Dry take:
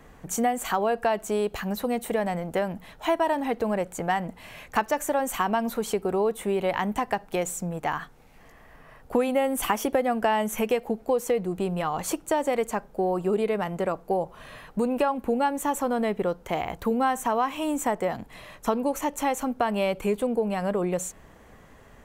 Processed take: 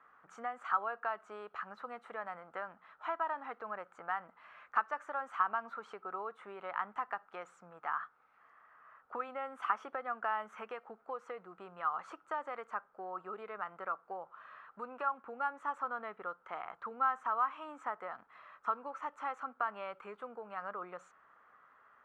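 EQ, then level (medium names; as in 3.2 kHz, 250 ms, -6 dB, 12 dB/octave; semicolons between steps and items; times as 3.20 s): band-pass filter 1.3 kHz, Q 7; distance through air 71 m; +3.5 dB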